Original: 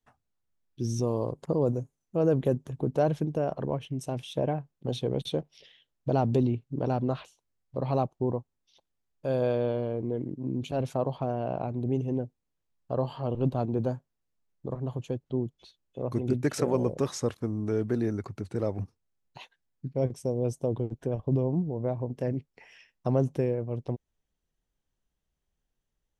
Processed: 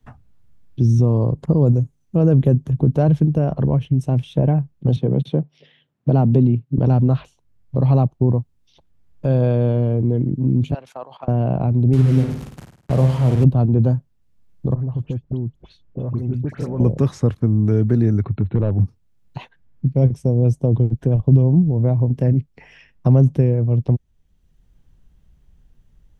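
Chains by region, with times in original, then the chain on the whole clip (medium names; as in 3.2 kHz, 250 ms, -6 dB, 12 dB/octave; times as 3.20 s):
4.96–6.78 s: high-pass 130 Hz 24 dB/octave + treble shelf 3.9 kHz -10.5 dB
10.74–11.28 s: high-pass 1 kHz + level held to a coarse grid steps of 13 dB
11.93–13.44 s: one-bit delta coder 64 kbps, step -32.5 dBFS + high-pass 55 Hz + flutter echo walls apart 9.2 m, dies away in 0.52 s
14.74–16.80 s: compression 2.5:1, threshold -41 dBFS + treble shelf 4.3 kHz -7 dB + phase dispersion highs, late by 71 ms, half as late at 1.9 kHz
18.23–18.80 s: low-pass that closes with the level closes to 1 kHz, closed at -28 dBFS + overload inside the chain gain 24 dB + brick-wall FIR low-pass 4.2 kHz
whole clip: tone controls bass +15 dB, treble -5 dB; three bands compressed up and down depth 40%; trim +3.5 dB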